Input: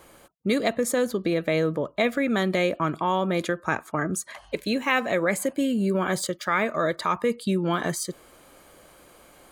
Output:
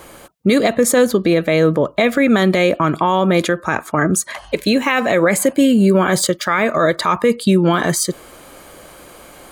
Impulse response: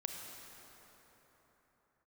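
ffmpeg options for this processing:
-af "alimiter=level_in=15.5dB:limit=-1dB:release=50:level=0:latency=1,volume=-3.5dB"

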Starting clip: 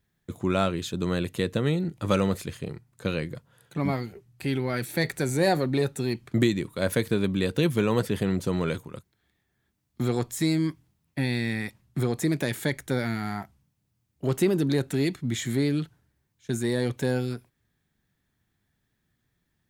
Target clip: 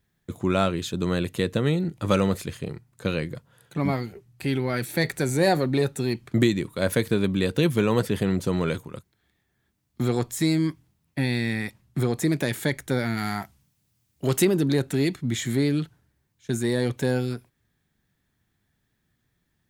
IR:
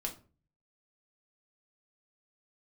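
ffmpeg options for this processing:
-filter_complex "[0:a]asettb=1/sr,asplit=3[link_01][link_02][link_03];[link_01]atrim=end=13.174[link_04];[link_02]atrim=start=13.17:end=14.45,asetpts=PTS-STARTPTS,afade=type=in:duration=0.004:curve=qsin,afade=type=out:start_time=1.276:duration=0.004:curve=qsin,highshelf=frequency=2100:gain=8.5[link_05];[link_03]atrim=start=14.446[link_06];[link_04][link_05]acrossfade=duration=0.004:curve1=hsin:curve2=qsin[link_07];[link_07][link_06]acrossfade=duration=0.004:curve1=qsin:curve2=hsin,volume=2dB"

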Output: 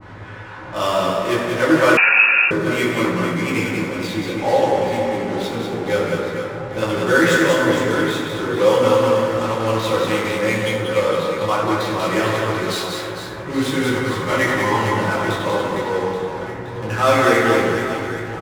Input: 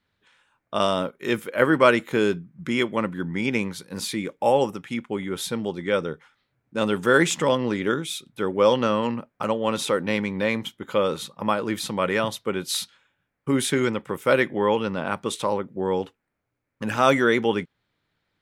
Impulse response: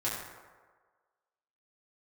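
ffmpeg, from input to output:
-filter_complex "[0:a]aeval=exprs='val(0)+0.5*0.0355*sgn(val(0))':channel_layout=same,asettb=1/sr,asplit=3[link_01][link_02][link_03];[link_01]atrim=end=13.944[link_04];[link_02]atrim=start=13.94:end=14.93,asetpts=PTS-STARTPTS,afade=type=in:duration=0.004:curve=qsin,afade=type=out:start_time=0.986:duration=0.004:curve=qsin,aecho=1:1:1:0.57,atrim=end_sample=43659[link_05];[link_03]atrim=start=14.926[link_06];[link_04][link_05]acrossfade=duration=0.004:curve1=hsin:curve2=qsin[link_07];[link_07][link_06]acrossfade=duration=0.004:curve1=qsin:curve2=hsin,adynamicsmooth=sensitivity=4.5:basefreq=510,aecho=1:1:190|456|828.4|1350|2080:0.631|0.398|0.251|0.158|0.1[link_08];[1:a]atrim=start_sample=2205[link_09];[link_08][link_09]afir=irnorm=-1:irlink=0,asettb=1/sr,asplit=3[link_10][link_11][link_12];[link_10]atrim=end=1.974[link_13];[link_11]atrim=start=1.97:end=2.51,asetpts=PTS-STARTPTS,afade=type=in:duration=0.004:curve=qsin,afade=type=out:start_time=0.536:duration=0.004:curve=qsin,lowpass=frequency=2500:width_type=q:width=0.5098,lowpass=frequency=2500:width_type=q:width=0.6013,lowpass=frequency=2500:width_type=q:width=0.9,lowpass=frequency=2500:width_type=q:width=2.563,afreqshift=-2900[link_14];[link_12]atrim=start=2.506[link_15];[link_13][link_14]acrossfade=duration=0.004:curve1=hsin:curve2=qsin[link_16];[link_16][link_15]acrossfade=duration=0.004:curve1=qsin:curve2=hsin,adynamicequalizer=threshold=0.0708:dfrequency=1800:dqfactor=0.7:tfrequency=1800:tqfactor=0.7:attack=5:release=100:ratio=0.375:range=1.5:mode=boostabove:tftype=highshelf,volume=-4.5dB"

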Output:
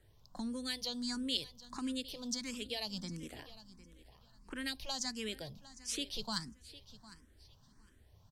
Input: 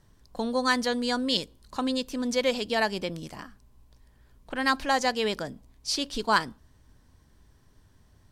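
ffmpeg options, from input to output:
ffmpeg -i in.wav -filter_complex "[0:a]acrossover=split=210|3000[link_01][link_02][link_03];[link_02]acompressor=threshold=-40dB:ratio=10[link_04];[link_01][link_04][link_03]amix=inputs=3:normalize=0,aecho=1:1:756|1512:0.141|0.0311,asplit=2[link_05][link_06];[link_06]afreqshift=1.5[link_07];[link_05][link_07]amix=inputs=2:normalize=1,volume=-2dB" out.wav

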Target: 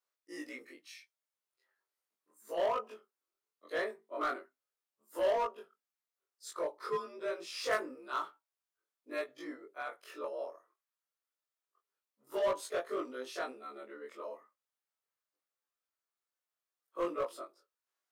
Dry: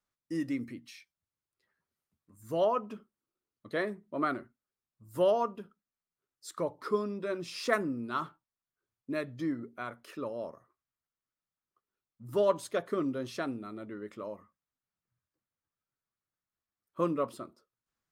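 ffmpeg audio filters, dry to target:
ffmpeg -i in.wav -filter_complex "[0:a]afftfilt=real='re':imag='-im':win_size=2048:overlap=0.75,highpass=frequency=400:width=0.5412,highpass=frequency=400:width=1.3066,asplit=2[link_01][link_02];[link_02]aeval=exprs='0.0211*(abs(mod(val(0)/0.0211+3,4)-2)-1)':channel_layout=same,volume=-6.5dB[link_03];[link_01][link_03]amix=inputs=2:normalize=0" out.wav

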